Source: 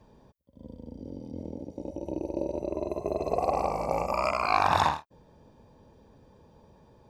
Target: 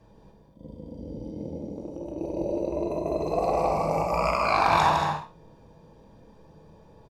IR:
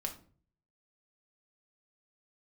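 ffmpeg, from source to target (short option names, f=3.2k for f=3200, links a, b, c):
-filter_complex "[0:a]asettb=1/sr,asplit=3[a][b][c];[a]atrim=end=1.614[d];[b]atrim=start=1.61:end=2.18,asetpts=PTS-STARTPTS,afade=t=in:d=0.004:c=qsin,afade=t=out:st=0.566:d=0.004:c=qsin,acompressor=threshold=-35dB:ratio=6[e];[c]atrim=start=2.176[f];[d][e]acrossfade=d=0.004:c1=hsin:c2=qsin[g];[g][f]acrossfade=d=0.004:c1=qsin:c2=hsin,aecho=1:1:157.4|198.3|230.3:0.501|0.251|0.398[h];[1:a]atrim=start_sample=2205,atrim=end_sample=4410,asetrate=33957,aresample=44100[i];[h][i]afir=irnorm=-1:irlink=0"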